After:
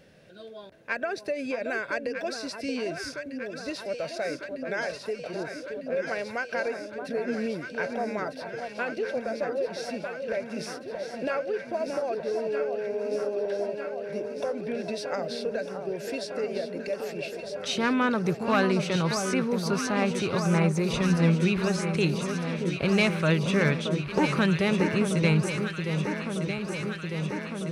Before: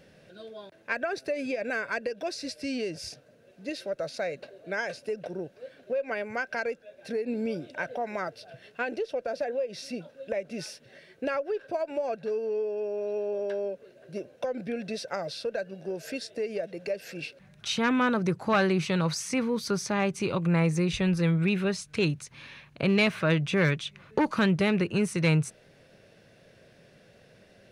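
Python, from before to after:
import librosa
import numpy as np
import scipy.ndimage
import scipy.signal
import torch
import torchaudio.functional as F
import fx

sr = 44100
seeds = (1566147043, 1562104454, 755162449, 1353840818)

y = fx.echo_alternate(x, sr, ms=626, hz=1200.0, feedback_pct=86, wet_db=-6)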